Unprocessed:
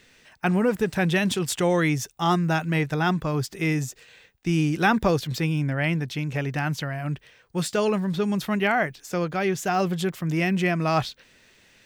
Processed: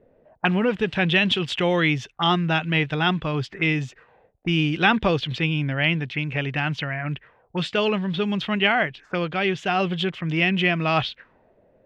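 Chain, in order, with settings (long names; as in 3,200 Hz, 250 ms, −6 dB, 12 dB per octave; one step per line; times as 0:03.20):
envelope-controlled low-pass 560–3,100 Hz up, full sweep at −24.5 dBFS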